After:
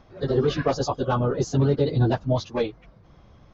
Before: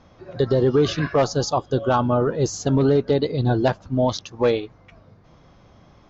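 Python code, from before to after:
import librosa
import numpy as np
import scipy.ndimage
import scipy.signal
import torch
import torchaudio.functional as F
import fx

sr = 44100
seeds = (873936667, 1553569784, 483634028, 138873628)

y = scipy.signal.sosfilt(scipy.signal.butter(2, 6500.0, 'lowpass', fs=sr, output='sos'), x)
y = fx.low_shelf(y, sr, hz=98.0, db=7.5)
y = fx.stretch_vocoder_free(y, sr, factor=0.58)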